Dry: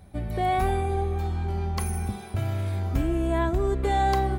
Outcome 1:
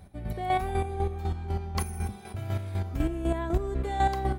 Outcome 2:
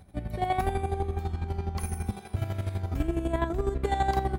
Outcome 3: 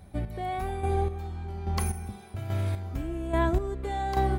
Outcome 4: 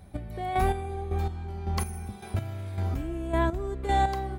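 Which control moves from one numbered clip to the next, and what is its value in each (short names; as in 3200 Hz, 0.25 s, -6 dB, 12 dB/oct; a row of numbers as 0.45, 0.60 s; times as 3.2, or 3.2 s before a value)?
chopper, rate: 4, 12, 1.2, 1.8 Hz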